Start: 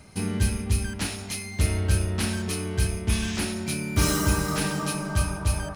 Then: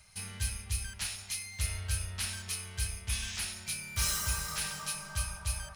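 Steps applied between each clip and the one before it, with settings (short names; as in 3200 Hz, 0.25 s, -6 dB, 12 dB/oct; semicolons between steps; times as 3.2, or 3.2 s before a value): passive tone stack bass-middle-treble 10-0-10; gain -2.5 dB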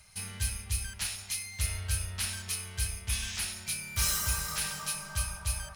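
bell 15000 Hz +6.5 dB 0.42 oct; gain +1.5 dB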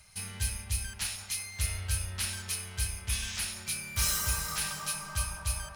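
band-limited delay 0.187 s, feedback 76%, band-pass 620 Hz, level -7 dB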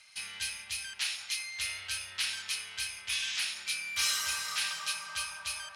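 band-pass 3000 Hz, Q 1; gain +6 dB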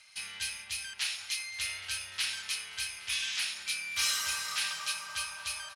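echo 0.819 s -19.5 dB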